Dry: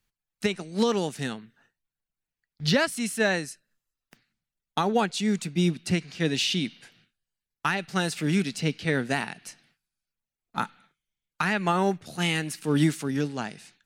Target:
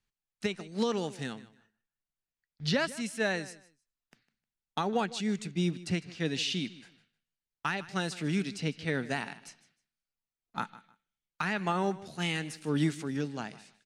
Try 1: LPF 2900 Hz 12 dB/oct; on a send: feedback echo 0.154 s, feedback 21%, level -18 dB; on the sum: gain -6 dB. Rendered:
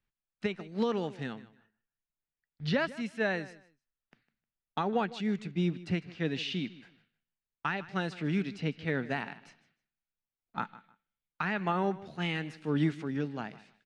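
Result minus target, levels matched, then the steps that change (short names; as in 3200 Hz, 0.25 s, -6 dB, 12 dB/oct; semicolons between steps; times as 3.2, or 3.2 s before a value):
8000 Hz band -14.0 dB
change: LPF 8700 Hz 12 dB/oct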